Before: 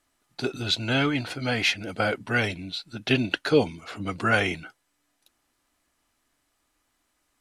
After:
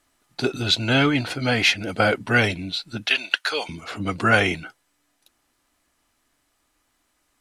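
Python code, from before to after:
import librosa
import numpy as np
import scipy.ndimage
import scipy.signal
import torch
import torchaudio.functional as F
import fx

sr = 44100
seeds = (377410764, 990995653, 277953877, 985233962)

p1 = fx.rider(x, sr, range_db=10, speed_s=2.0)
p2 = x + (p1 * librosa.db_to_amplitude(2.0))
p3 = fx.highpass(p2, sr, hz=1100.0, slope=12, at=(3.06, 3.69))
y = p3 * librosa.db_to_amplitude(-2.0)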